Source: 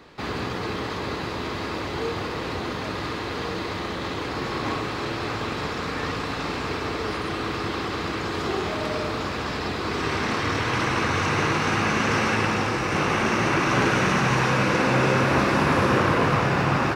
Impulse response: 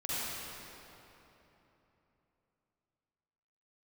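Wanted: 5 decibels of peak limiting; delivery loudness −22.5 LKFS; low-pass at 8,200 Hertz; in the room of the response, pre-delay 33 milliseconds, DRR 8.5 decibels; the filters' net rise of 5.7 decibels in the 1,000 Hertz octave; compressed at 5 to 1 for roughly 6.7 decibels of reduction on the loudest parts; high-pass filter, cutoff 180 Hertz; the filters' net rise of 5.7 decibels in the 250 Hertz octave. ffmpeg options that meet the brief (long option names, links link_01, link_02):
-filter_complex "[0:a]highpass=180,lowpass=8200,equalizer=frequency=250:width_type=o:gain=8.5,equalizer=frequency=1000:width_type=o:gain=6.5,acompressor=threshold=-20dB:ratio=5,alimiter=limit=-16.5dB:level=0:latency=1,asplit=2[link_01][link_02];[1:a]atrim=start_sample=2205,adelay=33[link_03];[link_02][link_03]afir=irnorm=-1:irlink=0,volume=-14.5dB[link_04];[link_01][link_04]amix=inputs=2:normalize=0,volume=2.5dB"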